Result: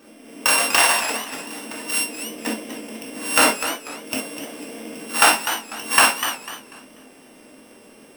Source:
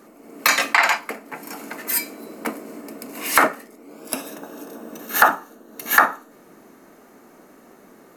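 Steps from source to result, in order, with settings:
samples sorted by size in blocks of 16 samples
reverb whose tail is shaped and stops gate 80 ms flat, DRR −1 dB
feedback echo with a swinging delay time 246 ms, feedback 31%, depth 138 cents, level −10 dB
level −2.5 dB

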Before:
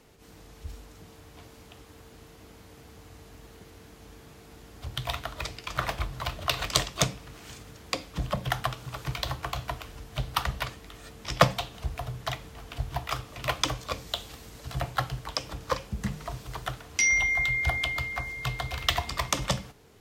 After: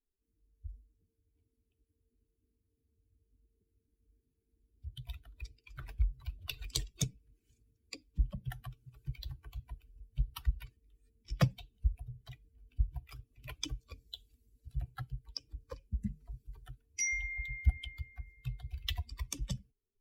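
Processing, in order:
spectral dynamics exaggerated over time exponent 2
guitar amp tone stack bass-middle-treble 10-0-1
soft clipping −29.5 dBFS, distortion −21 dB
level +14.5 dB

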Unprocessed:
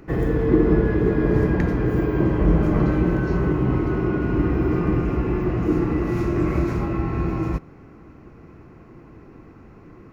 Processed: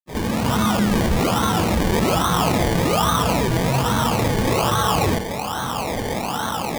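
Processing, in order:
dynamic equaliser 1,000 Hz, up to −6 dB, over −52 dBFS, Q 6.4
automatic gain control gain up to 15 dB
low-pass filter 1,500 Hz 24 dB per octave
convolution reverb RT60 0.15 s, pre-delay 135 ms
frequency shifter −230 Hz
high-pass filter 460 Hz 12 dB per octave
time stretch by phase vocoder 0.67×
in parallel at +1.5 dB: brickwall limiter −12 dBFS, peak gain reduction 8 dB
on the sum: sample-and-hold swept by an LFO 26×, swing 60% 1.2 Hz
envelope flattener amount 50%
level −8 dB

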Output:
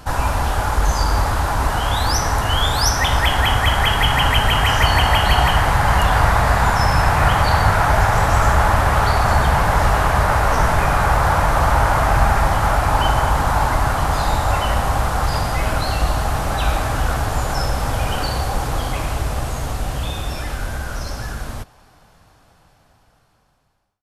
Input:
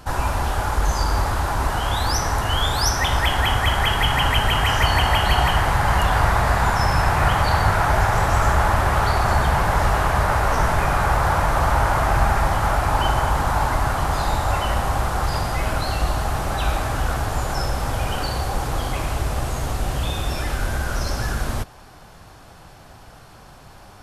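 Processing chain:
fade-out on the ending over 5.70 s
notch filter 370 Hz, Q 12
level +3 dB

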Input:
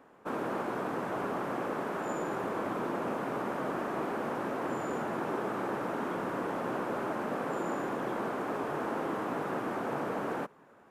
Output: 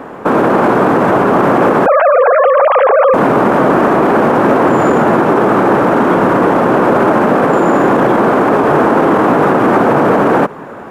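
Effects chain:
0:01.86–0:03.14: three sine waves on the formant tracks
high-shelf EQ 2,600 Hz −9.5 dB
boost into a limiter +32 dB
level −1 dB

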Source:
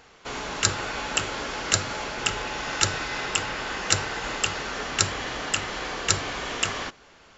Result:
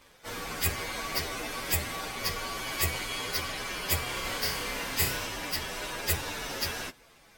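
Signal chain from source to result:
partials spread apart or drawn together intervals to 123%
0:04.03–0:05.27: flutter between parallel walls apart 5.2 metres, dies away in 0.43 s

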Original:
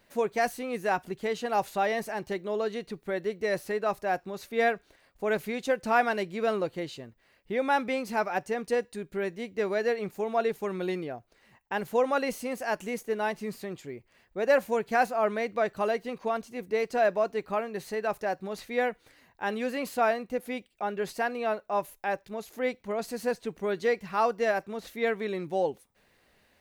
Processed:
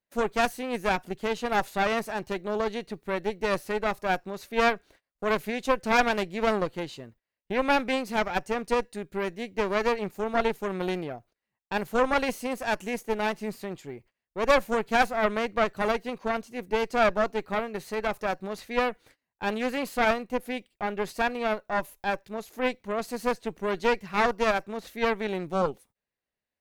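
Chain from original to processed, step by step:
harmonic generator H 4 −8 dB, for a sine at −11.5 dBFS
noise gate −53 dBFS, range −26 dB

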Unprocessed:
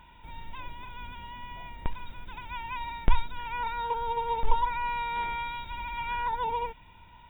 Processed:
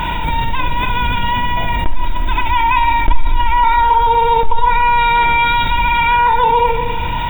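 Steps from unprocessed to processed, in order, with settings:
0:01.84–0:04.07: comb filter 3.1 ms, depth 71%
convolution reverb RT60 0.90 s, pre-delay 6 ms, DRR 5.5 dB
envelope flattener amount 70%
level −2.5 dB

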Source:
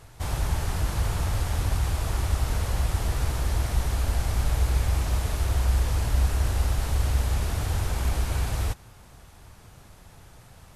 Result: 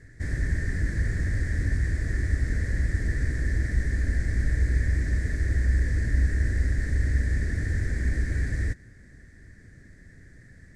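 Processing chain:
drawn EQ curve 150 Hz 0 dB, 280 Hz +5 dB, 610 Hz −10 dB, 880 Hz −26 dB, 1,300 Hz −16 dB, 1,800 Hz +12 dB, 2,800 Hz −22 dB, 4,600 Hz −10 dB, 8,100 Hz −8 dB, 13,000 Hz −28 dB

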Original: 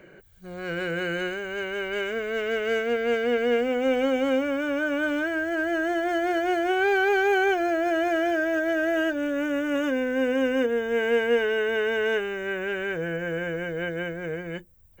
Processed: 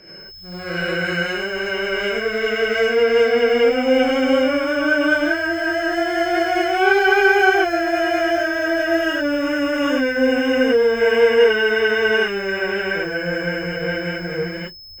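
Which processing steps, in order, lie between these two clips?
steady tone 5,200 Hz −49 dBFS
reverb whose tail is shaped and stops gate 120 ms rising, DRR −7 dB

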